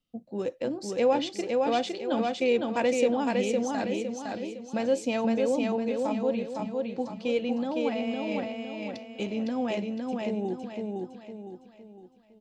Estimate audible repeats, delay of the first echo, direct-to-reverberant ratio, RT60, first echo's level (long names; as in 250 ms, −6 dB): 5, 509 ms, no reverb audible, no reverb audible, −3.0 dB